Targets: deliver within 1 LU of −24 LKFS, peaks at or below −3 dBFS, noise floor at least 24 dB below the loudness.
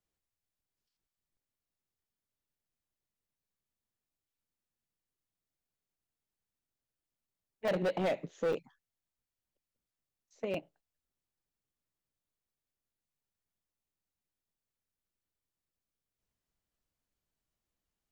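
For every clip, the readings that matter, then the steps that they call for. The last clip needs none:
share of clipped samples 0.5%; peaks flattened at −27.0 dBFS; number of dropouts 3; longest dropout 3.1 ms; integrated loudness −35.5 LKFS; sample peak −27.0 dBFS; target loudness −24.0 LKFS
→ clipped peaks rebuilt −27 dBFS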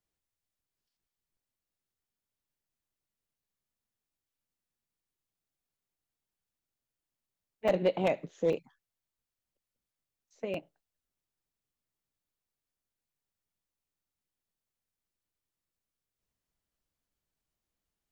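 share of clipped samples 0.0%; number of dropouts 3; longest dropout 3.1 ms
→ repair the gap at 0:07.68/0:08.53/0:10.54, 3.1 ms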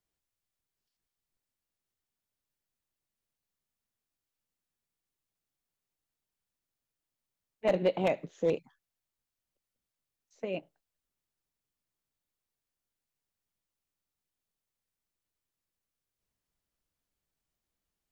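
number of dropouts 0; integrated loudness −32.0 LKFS; sample peak −18.0 dBFS; target loudness −24.0 LKFS
→ level +8 dB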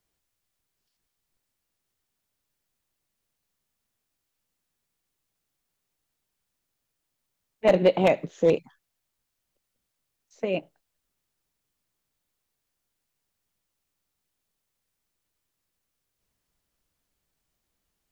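integrated loudness −24.0 LKFS; sample peak −10.0 dBFS; background noise floor −81 dBFS

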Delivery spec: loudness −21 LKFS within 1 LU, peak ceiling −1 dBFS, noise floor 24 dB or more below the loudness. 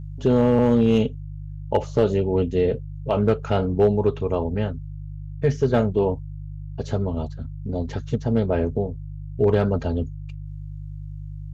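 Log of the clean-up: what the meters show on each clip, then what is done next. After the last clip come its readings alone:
share of clipped samples 0.6%; peaks flattened at −9.5 dBFS; mains hum 50 Hz; hum harmonics up to 150 Hz; level of the hum −32 dBFS; integrated loudness −22.5 LKFS; sample peak −9.5 dBFS; target loudness −21.0 LKFS
→ clipped peaks rebuilt −9.5 dBFS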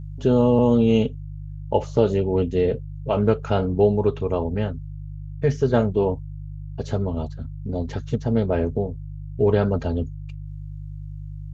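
share of clipped samples 0.0%; mains hum 50 Hz; hum harmonics up to 150 Hz; level of the hum −32 dBFS
→ hum removal 50 Hz, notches 3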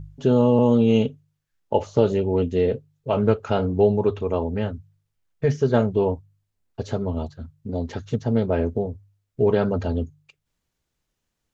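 mains hum none found; integrated loudness −22.5 LKFS; sample peak −4.5 dBFS; target loudness −21.0 LKFS
→ level +1.5 dB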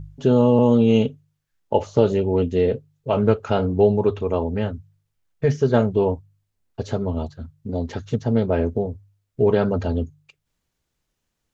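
integrated loudness −21.0 LKFS; sample peak −3.0 dBFS; background noise floor −77 dBFS

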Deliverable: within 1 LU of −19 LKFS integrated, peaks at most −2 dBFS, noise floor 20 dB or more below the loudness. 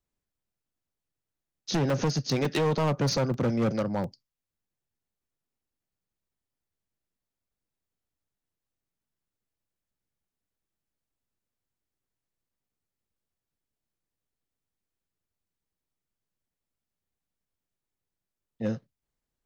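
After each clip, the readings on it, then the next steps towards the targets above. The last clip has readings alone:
share of clipped samples 1.5%; peaks flattened at −22.0 dBFS; number of dropouts 4; longest dropout 2.5 ms; integrated loudness −28.0 LKFS; sample peak −22.0 dBFS; target loudness −19.0 LKFS
→ clipped peaks rebuilt −22 dBFS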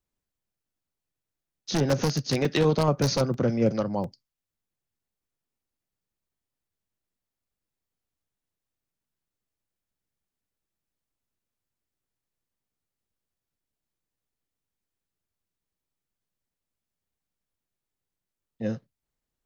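share of clipped samples 0.0%; number of dropouts 4; longest dropout 2.5 ms
→ repair the gap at 0:01.90/0:02.45/0:03.34/0:04.04, 2.5 ms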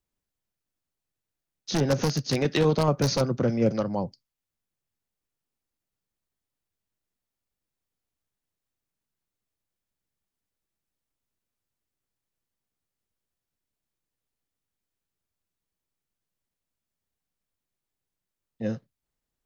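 number of dropouts 0; integrated loudness −26.0 LKFS; sample peak −13.0 dBFS; target loudness −19.0 LKFS
→ level +7 dB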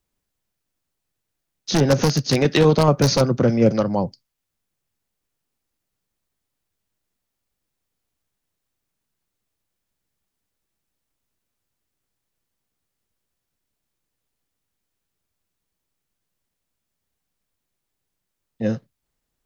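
integrated loudness −19.0 LKFS; sample peak −6.0 dBFS; background noise floor −80 dBFS

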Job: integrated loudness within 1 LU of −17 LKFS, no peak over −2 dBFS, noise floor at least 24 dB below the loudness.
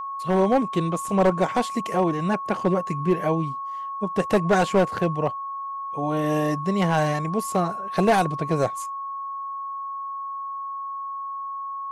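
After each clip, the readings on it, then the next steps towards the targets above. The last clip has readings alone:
share of clipped samples 0.9%; peaks flattened at −13.0 dBFS; interfering tone 1,100 Hz; level of the tone −29 dBFS; integrated loudness −24.5 LKFS; sample peak −13.0 dBFS; target loudness −17.0 LKFS
→ clipped peaks rebuilt −13 dBFS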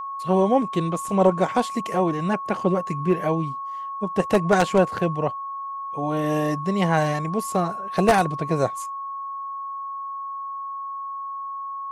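share of clipped samples 0.0%; interfering tone 1,100 Hz; level of the tone −29 dBFS
→ notch filter 1,100 Hz, Q 30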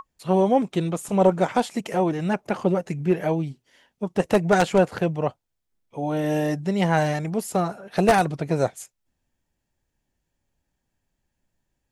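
interfering tone none found; integrated loudness −23.0 LKFS; sample peak −3.5 dBFS; target loudness −17.0 LKFS
→ level +6 dB
brickwall limiter −2 dBFS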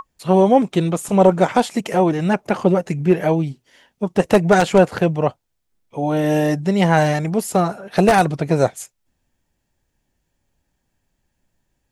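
integrated loudness −17.5 LKFS; sample peak −2.0 dBFS; background noise floor −73 dBFS

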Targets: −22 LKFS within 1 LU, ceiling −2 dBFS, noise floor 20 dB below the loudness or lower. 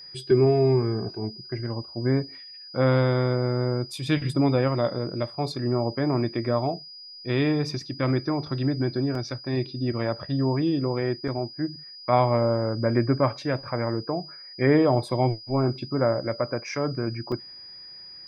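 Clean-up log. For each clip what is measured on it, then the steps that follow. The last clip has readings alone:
number of dropouts 3; longest dropout 2.6 ms; interfering tone 4,900 Hz; level of the tone −41 dBFS; integrated loudness −25.5 LKFS; sample peak −7.5 dBFS; target loudness −22.0 LKFS
→ repair the gap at 0:09.15/0:11.28/0:17.32, 2.6 ms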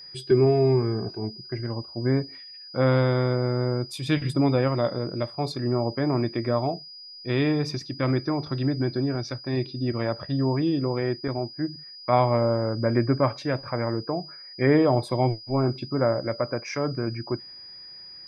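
number of dropouts 0; interfering tone 4,900 Hz; level of the tone −41 dBFS
→ notch filter 4,900 Hz, Q 30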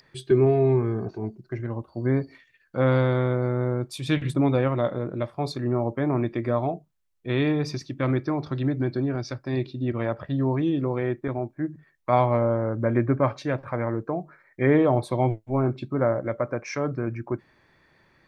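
interfering tone none found; integrated loudness −25.5 LKFS; sample peak −7.5 dBFS; target loudness −22.0 LKFS
→ level +3.5 dB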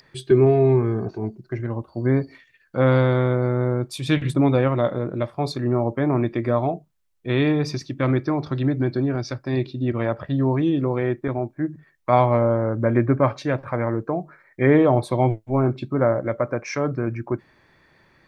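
integrated loudness −22.0 LKFS; sample peak −4.0 dBFS; background noise floor −61 dBFS

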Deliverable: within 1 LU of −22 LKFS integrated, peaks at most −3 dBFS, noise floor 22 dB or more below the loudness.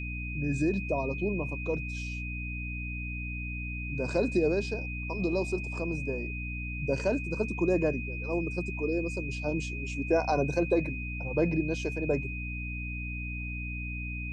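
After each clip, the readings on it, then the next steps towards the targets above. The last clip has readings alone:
mains hum 60 Hz; hum harmonics up to 300 Hz; level of the hum −35 dBFS; interfering tone 2,500 Hz; level of the tone −38 dBFS; integrated loudness −31.5 LKFS; sample peak −14.5 dBFS; target loudness −22.0 LKFS
→ mains-hum notches 60/120/180/240/300 Hz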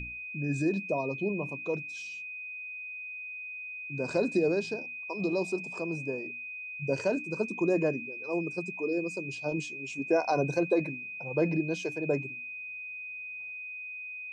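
mains hum none found; interfering tone 2,500 Hz; level of the tone −38 dBFS
→ notch filter 2,500 Hz, Q 30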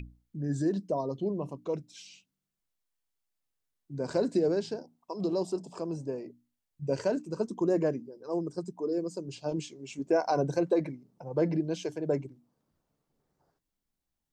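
interfering tone none found; integrated loudness −32.0 LKFS; sample peak −15.5 dBFS; target loudness −22.0 LKFS
→ level +10 dB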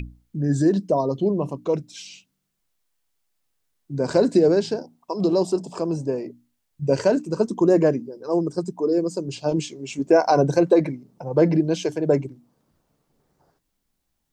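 integrated loudness −22.0 LKFS; sample peak −5.5 dBFS; background noise floor −75 dBFS

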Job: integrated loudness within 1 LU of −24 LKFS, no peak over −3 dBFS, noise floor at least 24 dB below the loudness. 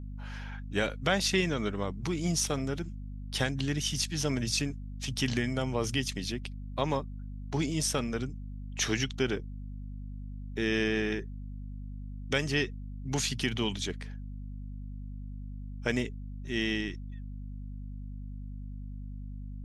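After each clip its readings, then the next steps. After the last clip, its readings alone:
mains hum 50 Hz; hum harmonics up to 250 Hz; level of the hum −38 dBFS; integrated loudness −32.0 LKFS; sample peak −12.0 dBFS; target loudness −24.0 LKFS
→ hum removal 50 Hz, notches 5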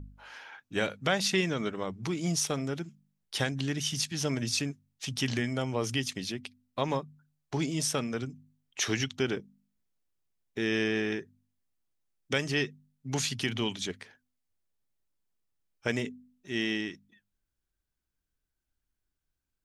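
mains hum none found; integrated loudness −32.0 LKFS; sample peak −12.0 dBFS; target loudness −24.0 LKFS
→ level +8 dB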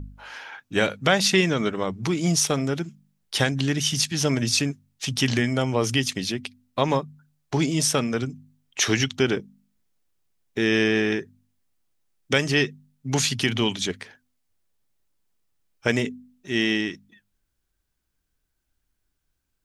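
integrated loudness −24.0 LKFS; sample peak −4.0 dBFS; background noise floor −77 dBFS

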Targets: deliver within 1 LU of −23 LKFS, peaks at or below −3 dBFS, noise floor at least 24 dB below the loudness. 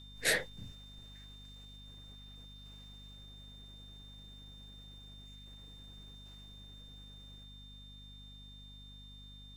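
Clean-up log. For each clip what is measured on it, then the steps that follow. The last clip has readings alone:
mains hum 50 Hz; hum harmonics up to 250 Hz; level of the hum −52 dBFS; interfering tone 3,600 Hz; level of the tone −54 dBFS; integrated loudness −45.0 LKFS; sample peak −16.0 dBFS; target loudness −23.0 LKFS
→ hum removal 50 Hz, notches 5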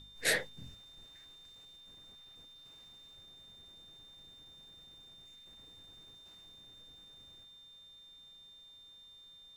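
mains hum none found; interfering tone 3,600 Hz; level of the tone −54 dBFS
→ notch filter 3,600 Hz, Q 30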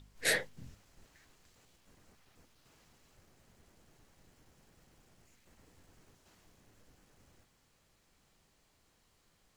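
interfering tone none found; integrated loudness −33.0 LKFS; sample peak −16.0 dBFS; target loudness −23.0 LKFS
→ level +10 dB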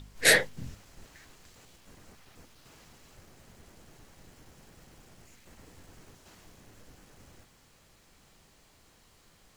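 integrated loudness −23.0 LKFS; sample peak −6.0 dBFS; background noise floor −62 dBFS

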